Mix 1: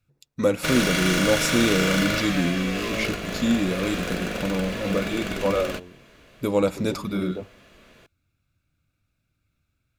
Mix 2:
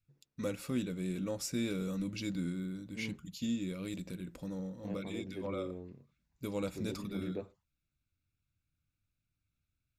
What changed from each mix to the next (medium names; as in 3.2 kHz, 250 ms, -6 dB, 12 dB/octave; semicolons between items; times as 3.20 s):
first voice -10.5 dB; background: muted; master: add peaking EQ 720 Hz -7.5 dB 2.4 oct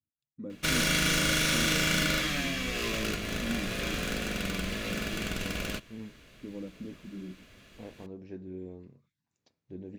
first voice: add band-pass filter 260 Hz, Q 1.5; second voice: entry +2.95 s; background: unmuted